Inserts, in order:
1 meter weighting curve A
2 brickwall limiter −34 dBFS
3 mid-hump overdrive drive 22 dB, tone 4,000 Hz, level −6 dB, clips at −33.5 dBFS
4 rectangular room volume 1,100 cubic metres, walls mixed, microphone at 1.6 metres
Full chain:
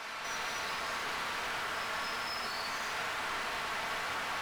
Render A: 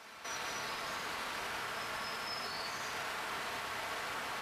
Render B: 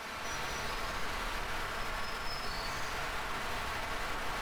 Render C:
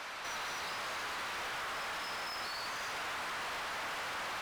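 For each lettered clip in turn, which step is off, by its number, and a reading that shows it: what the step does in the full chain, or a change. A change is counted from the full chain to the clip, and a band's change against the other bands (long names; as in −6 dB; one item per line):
3, 2 kHz band −2.5 dB
1, 125 Hz band +10.0 dB
4, echo-to-direct ratio −0.5 dB to none audible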